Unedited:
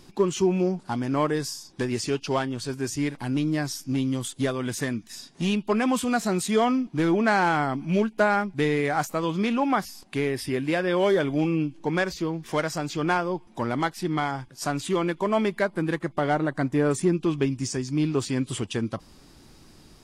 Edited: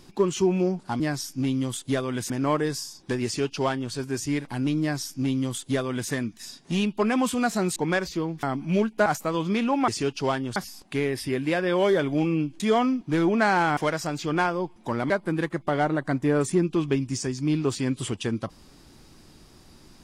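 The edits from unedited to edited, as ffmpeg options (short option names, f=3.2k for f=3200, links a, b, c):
-filter_complex "[0:a]asplit=11[a][b][c][d][e][f][g][h][i][j][k];[a]atrim=end=1.002[l];[b]atrim=start=3.508:end=4.812[m];[c]atrim=start=0.998:end=6.462[n];[d]atrim=start=11.808:end=12.482[o];[e]atrim=start=7.628:end=8.262[p];[f]atrim=start=8.948:end=9.772[q];[g]atrim=start=1.948:end=2.632[r];[h]atrim=start=9.768:end=11.812[s];[i]atrim=start=6.458:end=7.632[t];[j]atrim=start=12.478:end=13.812[u];[k]atrim=start=15.598[v];[l][m]acrossfade=d=0.004:c1=hsin:c2=hsin[w];[w][n]acrossfade=d=0.004:c1=hsin:c2=hsin[x];[x][o]acrossfade=d=0.004:c1=hsin:c2=hsin[y];[y][p]acrossfade=d=0.004:c1=hsin:c2=hsin[z];[z][q]acrossfade=d=0.004:c1=hsin:c2=hsin[aa];[aa][r]acrossfade=d=0.004:c1=hsin:c2=hsin[ab];[ab][s]acrossfade=d=0.004:c1=hsin:c2=hsin[ac];[ac][t]acrossfade=d=0.004:c1=hsin:c2=hsin[ad];[ad][u]acrossfade=d=0.004:c1=hsin:c2=hsin[ae];[ae][v]acrossfade=d=0.004:c1=hsin:c2=hsin"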